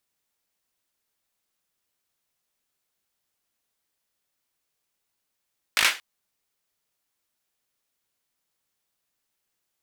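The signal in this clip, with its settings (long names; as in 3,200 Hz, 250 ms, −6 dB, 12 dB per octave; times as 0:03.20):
synth clap length 0.23 s, bursts 5, apart 19 ms, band 2,100 Hz, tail 0.28 s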